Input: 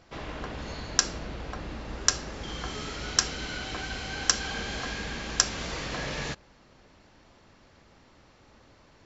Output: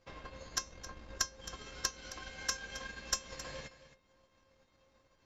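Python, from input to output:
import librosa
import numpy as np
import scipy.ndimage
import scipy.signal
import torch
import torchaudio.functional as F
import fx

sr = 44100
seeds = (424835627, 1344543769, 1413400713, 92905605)

y = fx.stretch_vocoder(x, sr, factor=0.58)
y = fx.comb_fb(y, sr, f0_hz=530.0, decay_s=0.3, harmonics='all', damping=0.0, mix_pct=90)
y = fx.transient(y, sr, attack_db=5, sustain_db=-9)
y = fx.cheby_harmonics(y, sr, harmonics=(8,), levels_db=(-24,), full_scale_db=-8.5)
y = y + 10.0 ** (-14.5 / 20.0) * np.pad(y, (int(267 * sr / 1000.0), 0))[:len(y)]
y = y * librosa.db_to_amplitude(4.5)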